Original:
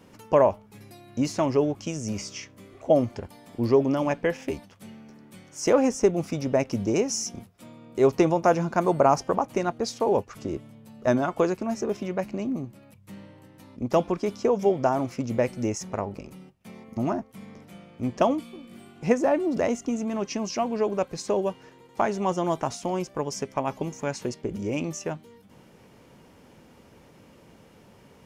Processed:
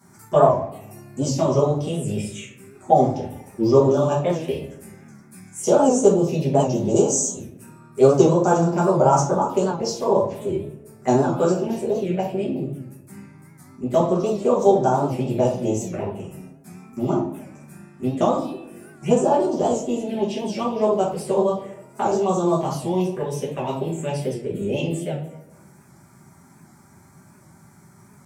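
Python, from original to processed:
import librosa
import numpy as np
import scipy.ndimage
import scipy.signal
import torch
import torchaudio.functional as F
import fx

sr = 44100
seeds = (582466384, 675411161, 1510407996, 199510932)

p1 = scipy.signal.sosfilt(scipy.signal.butter(2, 90.0, 'highpass', fs=sr, output='sos'), x)
p2 = fx.peak_eq(p1, sr, hz=7600.0, db=9.5, octaves=1.1)
p3 = fx.env_phaser(p2, sr, low_hz=460.0, high_hz=2000.0, full_db=-21.0)
p4 = fx.formant_shift(p3, sr, semitones=2)
p5 = p4 + fx.echo_tape(p4, sr, ms=76, feedback_pct=72, wet_db=-13.5, lp_hz=1600.0, drive_db=13.0, wow_cents=35, dry=0)
p6 = fx.room_shoebox(p5, sr, seeds[0], volume_m3=41.0, walls='mixed', distance_m=1.3)
p7 = fx.record_warp(p6, sr, rpm=78.0, depth_cents=100.0)
y = p7 * 10.0 ** (-3.0 / 20.0)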